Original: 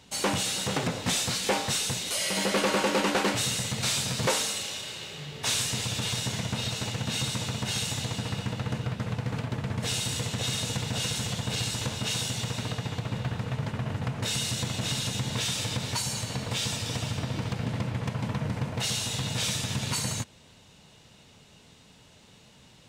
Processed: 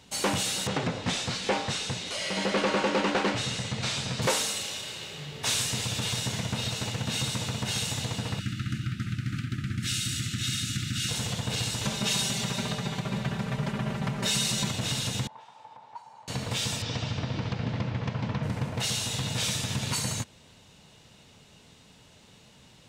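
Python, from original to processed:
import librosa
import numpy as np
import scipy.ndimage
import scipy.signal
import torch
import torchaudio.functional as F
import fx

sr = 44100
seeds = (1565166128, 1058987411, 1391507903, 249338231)

y = fx.air_absorb(x, sr, metres=88.0, at=(0.67, 4.22))
y = fx.brickwall_bandstop(y, sr, low_hz=370.0, high_hz=1200.0, at=(8.39, 11.09))
y = fx.comb(y, sr, ms=5.1, depth=0.98, at=(11.84, 14.71))
y = fx.bandpass_q(y, sr, hz=880.0, q=8.5, at=(15.27, 16.28))
y = fx.lowpass(y, sr, hz=5700.0, slope=24, at=(16.82, 18.43))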